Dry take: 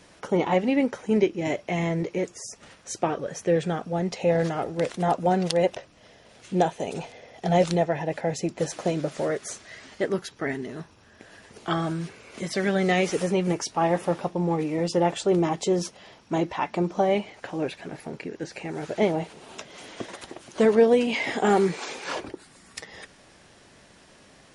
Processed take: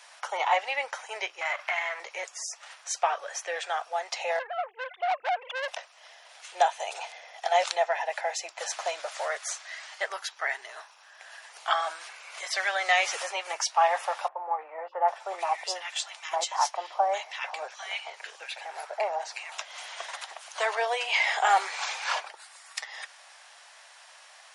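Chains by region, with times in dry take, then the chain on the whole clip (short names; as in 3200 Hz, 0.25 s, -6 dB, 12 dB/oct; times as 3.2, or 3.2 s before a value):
1.41–2 half-wave gain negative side -7 dB + bell 1600 Hz +14 dB 2.1 oct + compressor 3:1, threshold -29 dBFS
4.39–5.68 sine-wave speech + tube stage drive 25 dB, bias 0.3
14.28–19.52 HPF 310 Hz 24 dB/oct + bands offset in time lows, highs 0.8 s, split 1600 Hz
whole clip: steep high-pass 700 Hz 36 dB/oct; dynamic EQ 9700 Hz, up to -5 dB, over -54 dBFS, Q 1.7; gain +4 dB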